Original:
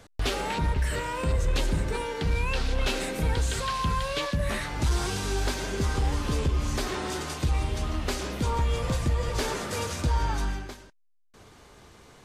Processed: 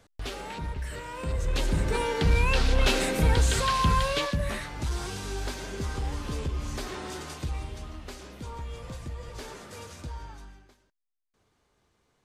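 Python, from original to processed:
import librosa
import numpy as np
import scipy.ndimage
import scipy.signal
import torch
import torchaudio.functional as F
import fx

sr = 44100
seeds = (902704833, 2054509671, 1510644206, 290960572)

y = fx.gain(x, sr, db=fx.line((1.01, -8.0), (2.06, 4.0), (4.01, 4.0), (4.73, -5.5), (7.35, -5.5), (8.03, -12.0), (10.03, -12.0), (10.51, -19.0)))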